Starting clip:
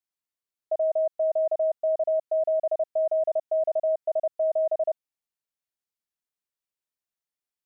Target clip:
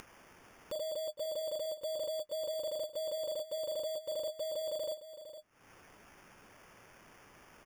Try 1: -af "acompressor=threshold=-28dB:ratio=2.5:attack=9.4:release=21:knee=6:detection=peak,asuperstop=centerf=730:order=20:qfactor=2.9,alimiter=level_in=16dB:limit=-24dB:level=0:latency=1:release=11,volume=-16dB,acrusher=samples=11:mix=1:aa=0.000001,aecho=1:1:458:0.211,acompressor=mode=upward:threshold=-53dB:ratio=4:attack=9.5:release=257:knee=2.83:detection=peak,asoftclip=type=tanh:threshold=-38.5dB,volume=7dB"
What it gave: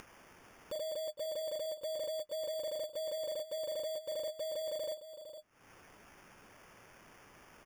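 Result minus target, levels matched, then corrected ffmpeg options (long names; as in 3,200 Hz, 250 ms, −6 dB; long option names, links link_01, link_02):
soft clipping: distortion +16 dB
-af "acompressor=threshold=-28dB:ratio=2.5:attack=9.4:release=21:knee=6:detection=peak,asuperstop=centerf=730:order=20:qfactor=2.9,alimiter=level_in=16dB:limit=-24dB:level=0:latency=1:release=11,volume=-16dB,acrusher=samples=11:mix=1:aa=0.000001,aecho=1:1:458:0.211,acompressor=mode=upward:threshold=-53dB:ratio=4:attack=9.5:release=257:knee=2.83:detection=peak,asoftclip=type=tanh:threshold=-29.5dB,volume=7dB"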